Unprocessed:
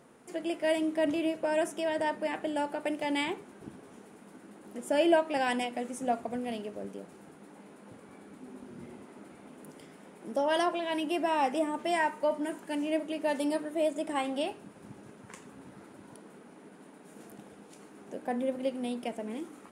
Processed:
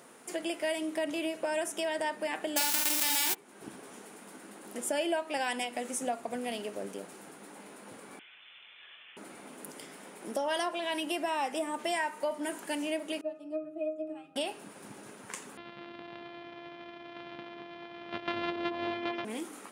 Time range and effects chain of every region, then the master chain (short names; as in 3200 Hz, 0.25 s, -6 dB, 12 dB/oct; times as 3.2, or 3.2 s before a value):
2.56–3.33 spectral whitening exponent 0.1 + doubler 47 ms -4.5 dB + fast leveller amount 70%
8.19–9.17 HPF 1100 Hz + inverted band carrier 3800 Hz
13.21–14.36 high shelf 5800 Hz +5.5 dB + octave resonator D#, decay 0.22 s
15.57–19.25 sample sorter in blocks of 128 samples + steep low-pass 3700 Hz + delay with a stepping band-pass 0.217 s, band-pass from 330 Hz, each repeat 1.4 oct, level -0.5 dB
whole clip: tilt +2 dB/oct; compressor 3:1, threshold -36 dBFS; HPF 160 Hz 6 dB/oct; gain +5 dB